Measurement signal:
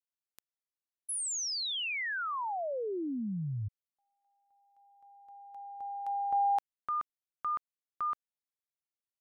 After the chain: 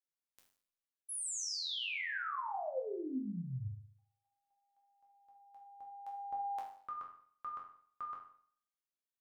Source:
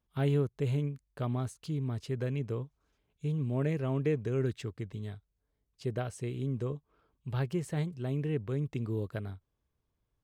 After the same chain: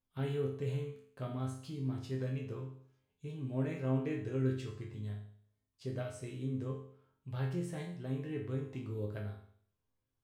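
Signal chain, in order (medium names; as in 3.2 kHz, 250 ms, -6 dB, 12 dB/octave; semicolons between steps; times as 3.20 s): chord resonator F2 minor, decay 0.58 s; trim +11 dB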